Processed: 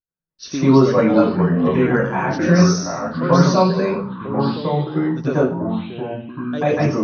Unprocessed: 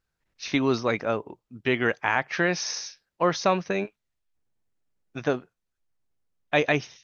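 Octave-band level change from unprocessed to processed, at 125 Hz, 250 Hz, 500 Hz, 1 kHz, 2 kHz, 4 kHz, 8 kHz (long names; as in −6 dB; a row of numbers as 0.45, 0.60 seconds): +17.5 dB, +14.5 dB, +9.5 dB, +7.5 dB, +0.5 dB, +3.0 dB, can't be measured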